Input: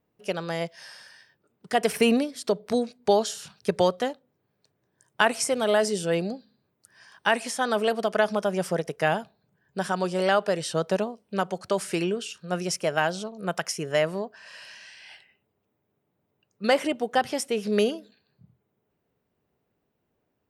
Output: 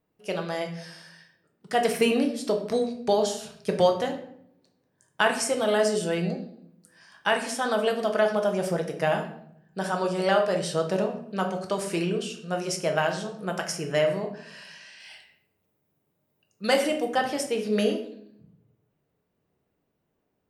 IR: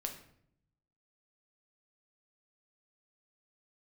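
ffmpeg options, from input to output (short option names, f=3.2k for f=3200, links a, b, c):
-filter_complex "[0:a]asettb=1/sr,asplit=3[a][b][c];[a]atrim=end=15.004[d];[b]atrim=start=15:end=17.14,asetpts=PTS-STARTPTS,afade=t=in:d=0.004:c=qsin,afade=t=out:st=2.136:d=0.004:c=qsin,aemphasis=mode=production:type=cd[e];[c]atrim=start=17.136[f];[d][e]acrossfade=d=0.004:c1=hsin:c2=qsin[g];[g][f]acrossfade=d=0.004:c1=qsin:c2=hsin[h];[1:a]atrim=start_sample=2205[i];[h][i]afir=irnorm=-1:irlink=0"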